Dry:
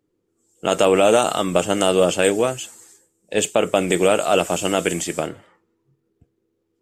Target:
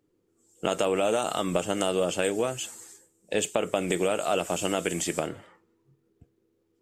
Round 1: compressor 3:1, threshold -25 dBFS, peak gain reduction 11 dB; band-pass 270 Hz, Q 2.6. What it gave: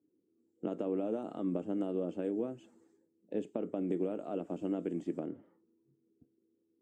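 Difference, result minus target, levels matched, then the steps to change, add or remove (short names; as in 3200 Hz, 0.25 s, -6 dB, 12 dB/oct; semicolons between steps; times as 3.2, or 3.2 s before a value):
250 Hz band +6.5 dB
remove: band-pass 270 Hz, Q 2.6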